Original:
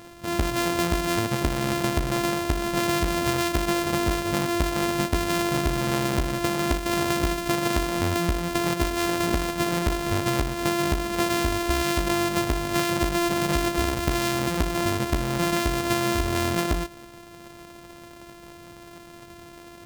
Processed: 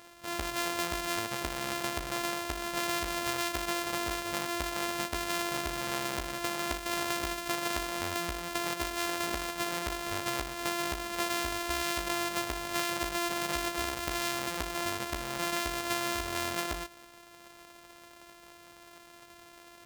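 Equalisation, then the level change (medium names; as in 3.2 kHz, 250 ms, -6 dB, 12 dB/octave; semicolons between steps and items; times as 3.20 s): high-pass 74 Hz 6 dB/octave; peaking EQ 150 Hz -13 dB 2.9 oct; -4.5 dB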